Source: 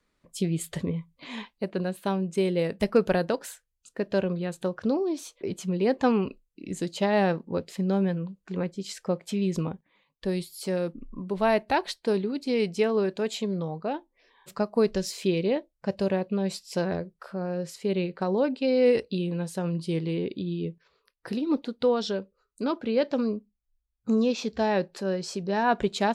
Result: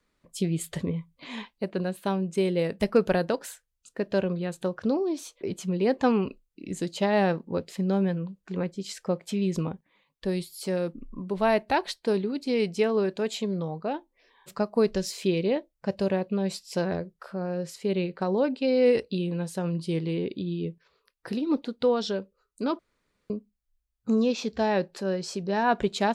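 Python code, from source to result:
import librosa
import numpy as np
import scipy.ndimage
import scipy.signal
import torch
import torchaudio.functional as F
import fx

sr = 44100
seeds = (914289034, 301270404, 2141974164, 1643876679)

y = fx.edit(x, sr, fx.room_tone_fill(start_s=22.79, length_s=0.51), tone=tone)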